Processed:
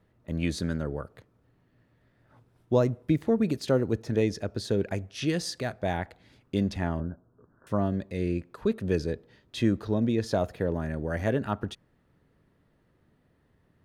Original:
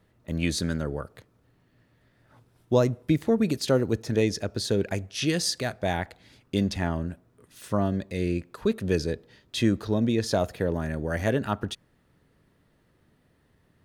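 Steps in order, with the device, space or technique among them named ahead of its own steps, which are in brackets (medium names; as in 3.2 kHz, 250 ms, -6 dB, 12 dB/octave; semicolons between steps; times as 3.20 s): behind a face mask (treble shelf 2.9 kHz -8 dB); 7.00–7.67 s: steep low-pass 1.6 kHz 96 dB/octave; trim -1.5 dB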